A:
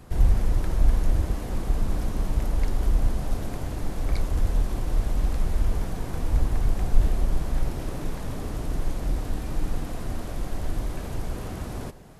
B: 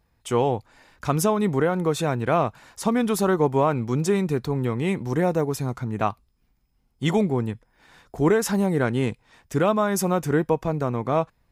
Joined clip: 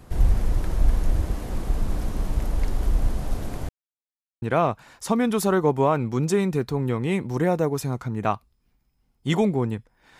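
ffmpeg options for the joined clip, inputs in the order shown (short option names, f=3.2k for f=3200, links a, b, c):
-filter_complex "[0:a]apad=whole_dur=10.19,atrim=end=10.19,asplit=2[a][b];[a]atrim=end=3.69,asetpts=PTS-STARTPTS,afade=t=out:st=3.686:d=0.004:c=hsin[c];[b]atrim=start=3.69:end=4.42,asetpts=PTS-STARTPTS,volume=0[d];[1:a]atrim=start=2.18:end=7.95,asetpts=PTS-STARTPTS,afade=t=in:d=0.004:c=hsin[e];[c][d][e]concat=n=3:v=0:a=1"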